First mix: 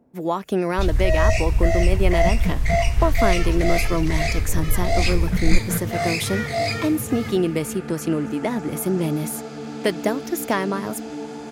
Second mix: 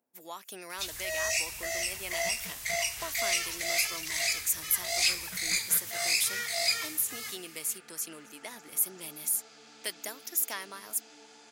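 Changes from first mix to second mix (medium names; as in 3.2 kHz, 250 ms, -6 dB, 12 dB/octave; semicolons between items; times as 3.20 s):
first sound +6.0 dB; second sound: add distance through air 87 m; master: add differentiator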